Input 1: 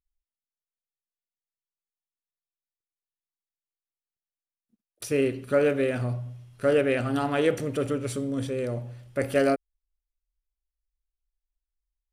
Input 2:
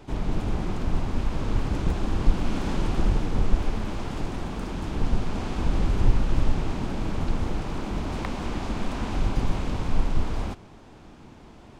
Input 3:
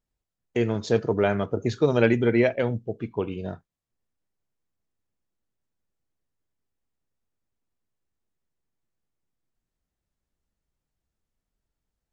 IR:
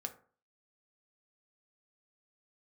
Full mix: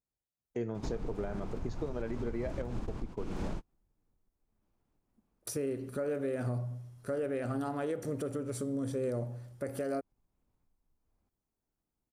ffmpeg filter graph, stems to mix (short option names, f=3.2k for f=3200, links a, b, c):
-filter_complex "[0:a]adelay=450,volume=-0.5dB[a];[1:a]equalizer=f=2.6k:w=1.5:g=8,acompressor=threshold=-30dB:ratio=6,adelay=750,volume=-1dB[b];[2:a]volume=-8dB,asplit=2[c][d];[d]apad=whole_len=553332[e];[b][e]sidechaingate=range=-42dB:threshold=-45dB:ratio=16:detection=peak[f];[a][c]amix=inputs=2:normalize=0,highpass=f=86:p=1,acompressor=threshold=-27dB:ratio=4,volume=0dB[g];[f][g]amix=inputs=2:normalize=0,equalizer=f=2.8k:t=o:w=1.2:g=-12,alimiter=level_in=2dB:limit=-24dB:level=0:latency=1:release=205,volume=-2dB"